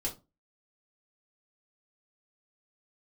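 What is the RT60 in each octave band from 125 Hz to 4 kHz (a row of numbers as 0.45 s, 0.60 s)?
0.35 s, 0.35 s, 0.30 s, 0.25 s, 0.20 s, 0.20 s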